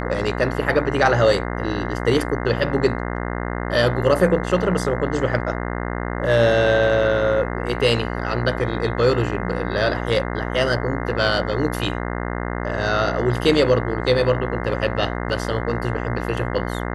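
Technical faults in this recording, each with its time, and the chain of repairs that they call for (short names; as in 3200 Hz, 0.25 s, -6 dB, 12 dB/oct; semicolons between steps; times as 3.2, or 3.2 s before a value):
buzz 60 Hz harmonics 35 -26 dBFS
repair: de-hum 60 Hz, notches 35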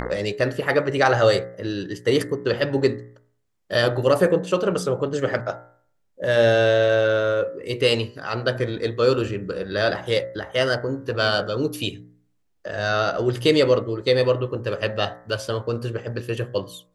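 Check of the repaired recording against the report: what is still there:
none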